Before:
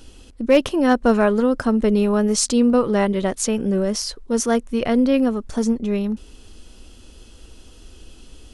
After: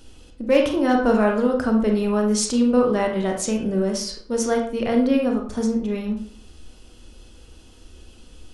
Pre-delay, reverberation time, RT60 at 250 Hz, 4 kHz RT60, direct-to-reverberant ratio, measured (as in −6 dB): 28 ms, 0.50 s, 0.50 s, 0.35 s, 1.0 dB